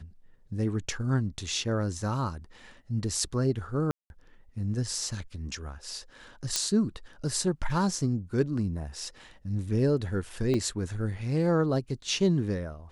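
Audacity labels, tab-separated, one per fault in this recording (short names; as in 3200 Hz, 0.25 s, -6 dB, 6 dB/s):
3.910000	4.100000	gap 0.191 s
6.560000	6.560000	pop -10 dBFS
10.540000	10.540000	gap 2.3 ms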